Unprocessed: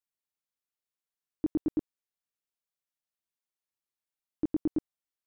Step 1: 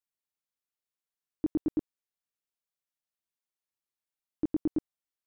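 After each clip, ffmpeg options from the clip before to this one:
ffmpeg -i in.wav -af anull out.wav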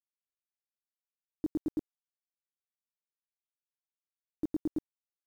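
ffmpeg -i in.wav -af "acrusher=bits=8:mix=0:aa=0.000001,volume=-4dB" out.wav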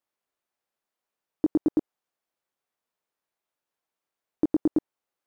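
ffmpeg -i in.wav -af "equalizer=frequency=660:width=0.33:gain=12.5,acompressor=threshold=-23dB:ratio=6,volume=4dB" out.wav

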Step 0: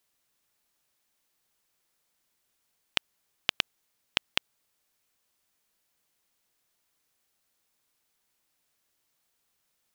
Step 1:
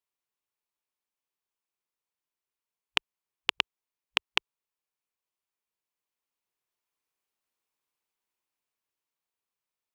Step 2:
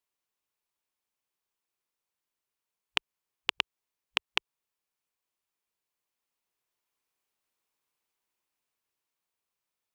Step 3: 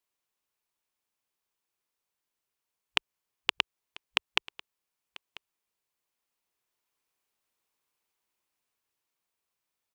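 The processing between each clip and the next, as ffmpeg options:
ffmpeg -i in.wav -af "afwtdn=0.00282,equalizer=frequency=400:width_type=o:width=0.67:gain=6,equalizer=frequency=1000:width_type=o:width=0.67:gain=8,equalizer=frequency=2500:width_type=o:width=0.67:gain=5,dynaudnorm=framelen=380:gausssize=13:maxgain=7.5dB,volume=-1dB" out.wav
ffmpeg -i in.wav -af "alimiter=limit=-6.5dB:level=0:latency=1:release=142,volume=2.5dB" out.wav
ffmpeg -i in.wav -af "aecho=1:1:992:0.1,volume=1.5dB" out.wav

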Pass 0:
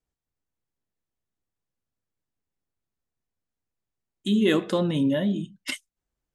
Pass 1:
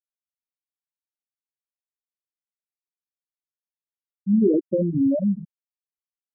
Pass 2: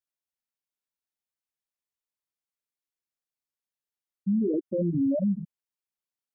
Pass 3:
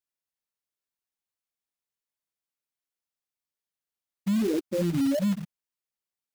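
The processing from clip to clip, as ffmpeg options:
ffmpeg -i in.wav -af "afftfilt=real='re*gte(hypot(re,im),0.355)':imag='im*gte(hypot(re,im),0.355)':win_size=1024:overlap=0.75,volume=3.5dB" out.wav
ffmpeg -i in.wav -af "alimiter=limit=-20dB:level=0:latency=1:release=95" out.wav
ffmpeg -i in.wav -af "acrusher=bits=3:mode=log:mix=0:aa=0.000001" out.wav

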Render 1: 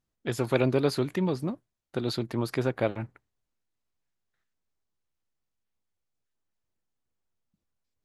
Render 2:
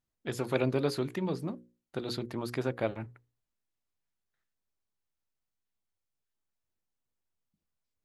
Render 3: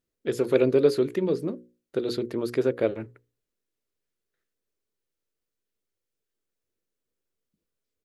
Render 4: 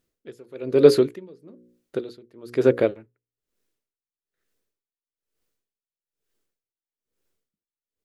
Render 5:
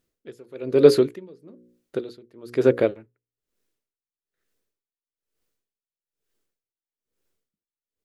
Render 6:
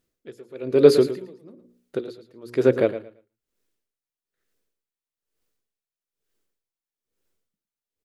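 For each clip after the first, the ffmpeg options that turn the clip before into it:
ffmpeg -i in.wav -af "bandreject=frequency=60:width_type=h:width=6,bandreject=frequency=120:width_type=h:width=6,bandreject=frequency=180:width_type=h:width=6,bandreject=frequency=240:width_type=h:width=6,bandreject=frequency=300:width_type=h:width=6,bandreject=frequency=360:width_type=h:width=6,bandreject=frequency=420:width_type=h:width=6,bandreject=frequency=480:width_type=h:width=6,bandreject=frequency=540:width_type=h:width=6,volume=-4dB" out.wav
ffmpeg -i in.wav -af "firequalizer=gain_entry='entry(130,0);entry(440,13);entry(770,-4);entry(1400,2)':delay=0.05:min_phase=1" out.wav
ffmpeg -i in.wav -af "aeval=exprs='val(0)*pow(10,-30*(0.5-0.5*cos(2*PI*1.1*n/s))/20)':channel_layout=same,volume=8.5dB" out.wav
ffmpeg -i in.wav -af anull out.wav
ffmpeg -i in.wav -af "aecho=1:1:112|224|336:0.237|0.0522|0.0115" out.wav

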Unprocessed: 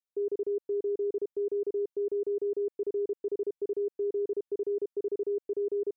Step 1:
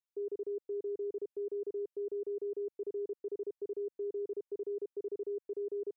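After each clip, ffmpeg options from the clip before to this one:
ffmpeg -i in.wav -af "equalizer=frequency=160:width_type=o:width=0.91:gain=-10,volume=-6dB" out.wav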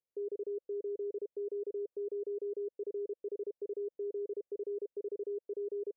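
ffmpeg -i in.wav -af "alimiter=level_in=15.5dB:limit=-24dB:level=0:latency=1:release=13,volume=-15.5dB,lowpass=frequency=520:width_type=q:width=3.4,volume=-1dB" out.wav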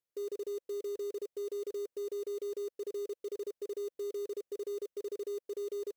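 ffmpeg -i in.wav -af "acrusher=bits=4:mode=log:mix=0:aa=0.000001" out.wav

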